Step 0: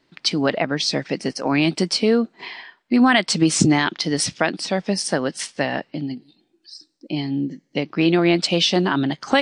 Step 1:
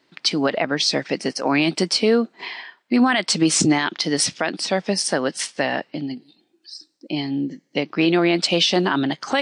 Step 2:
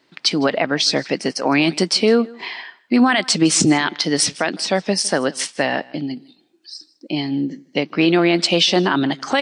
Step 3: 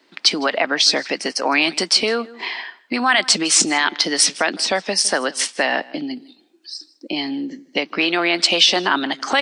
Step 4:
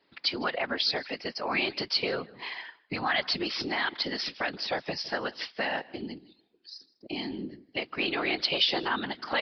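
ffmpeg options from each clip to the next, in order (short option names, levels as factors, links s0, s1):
-af "highpass=f=260:p=1,alimiter=level_in=2.82:limit=0.891:release=50:level=0:latency=1,volume=0.473"
-af "aecho=1:1:158:0.0708,volume=1.33"
-filter_complex "[0:a]highpass=f=210:w=0.5412,highpass=f=210:w=1.3066,acrossover=split=710[s0][s1];[s0]acompressor=threshold=0.0447:ratio=6[s2];[s2][s1]amix=inputs=2:normalize=0,volume=1.41"
-af "afftfilt=real='hypot(re,im)*cos(2*PI*random(0))':imag='hypot(re,im)*sin(2*PI*random(1))':win_size=512:overlap=0.75,aresample=11025,aresample=44100,volume=0.562"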